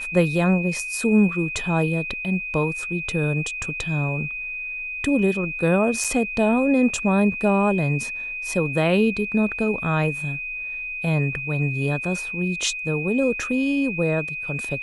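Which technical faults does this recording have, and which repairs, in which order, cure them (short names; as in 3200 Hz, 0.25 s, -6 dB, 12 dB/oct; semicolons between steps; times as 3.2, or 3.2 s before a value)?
tone 2500 Hz -28 dBFS
6.04–6.05 gap 5.2 ms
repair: notch 2500 Hz, Q 30; interpolate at 6.04, 5.2 ms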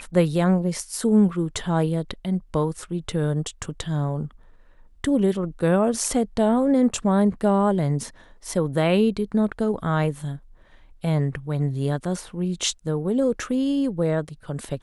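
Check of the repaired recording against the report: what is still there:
none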